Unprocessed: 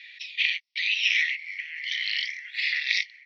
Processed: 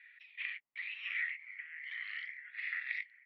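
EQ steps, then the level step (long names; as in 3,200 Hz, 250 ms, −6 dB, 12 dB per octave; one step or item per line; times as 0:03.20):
Chebyshev low-pass filter 1,200 Hz, order 3
+6.5 dB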